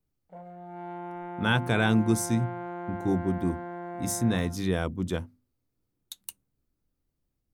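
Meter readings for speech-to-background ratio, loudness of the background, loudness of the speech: 10.5 dB, -38.5 LUFS, -28.0 LUFS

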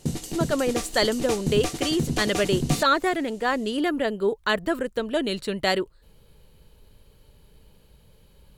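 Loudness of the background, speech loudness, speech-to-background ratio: -29.5 LUFS, -25.0 LUFS, 4.5 dB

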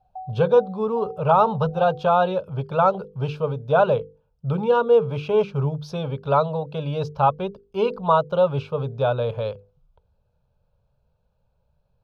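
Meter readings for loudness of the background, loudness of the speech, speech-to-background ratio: -40.0 LUFS, -22.0 LUFS, 18.0 dB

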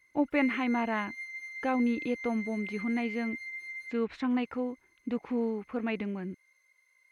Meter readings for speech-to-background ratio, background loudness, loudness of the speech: 7.5 dB, -40.0 LUFS, -32.5 LUFS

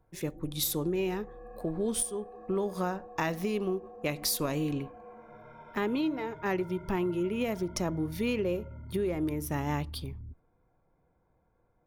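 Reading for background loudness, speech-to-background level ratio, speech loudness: -48.0 LUFS, 15.5 dB, -32.5 LUFS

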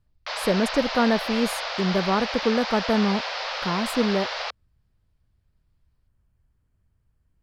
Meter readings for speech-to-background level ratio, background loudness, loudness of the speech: 4.0 dB, -29.0 LUFS, -25.0 LUFS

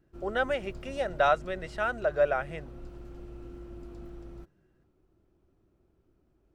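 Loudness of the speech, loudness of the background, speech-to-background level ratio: -29.5 LUFS, -46.5 LUFS, 17.0 dB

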